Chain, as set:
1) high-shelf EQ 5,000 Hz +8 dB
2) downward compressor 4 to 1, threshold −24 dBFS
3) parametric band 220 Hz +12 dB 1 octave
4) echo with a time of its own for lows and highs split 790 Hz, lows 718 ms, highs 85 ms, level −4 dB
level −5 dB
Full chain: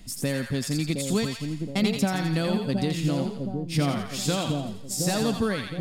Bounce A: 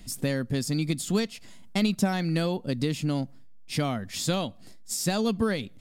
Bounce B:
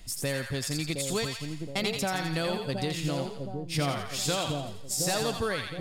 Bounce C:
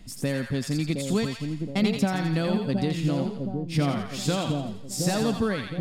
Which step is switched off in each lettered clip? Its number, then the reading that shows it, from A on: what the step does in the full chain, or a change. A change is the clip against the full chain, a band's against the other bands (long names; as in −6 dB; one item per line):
4, echo-to-direct ratio −2.5 dB to none audible
3, 250 Hz band −8.0 dB
1, 8 kHz band −3.5 dB